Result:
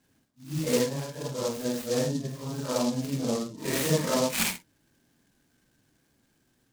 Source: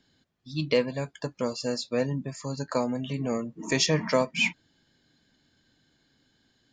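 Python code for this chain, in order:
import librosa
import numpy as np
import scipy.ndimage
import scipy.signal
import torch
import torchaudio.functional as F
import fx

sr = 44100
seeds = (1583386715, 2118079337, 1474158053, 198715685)

y = fx.phase_scramble(x, sr, seeds[0], window_ms=200)
y = scipy.signal.sosfilt(scipy.signal.butter(2, 3600.0, 'lowpass', fs=sr, output='sos'), y)
y = fx.noise_mod_delay(y, sr, seeds[1], noise_hz=5100.0, depth_ms=0.086)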